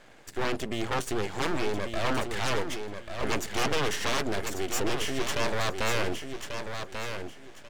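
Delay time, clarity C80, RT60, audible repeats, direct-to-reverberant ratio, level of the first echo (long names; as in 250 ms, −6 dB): 1,140 ms, no reverb audible, no reverb audible, 3, no reverb audible, −7.0 dB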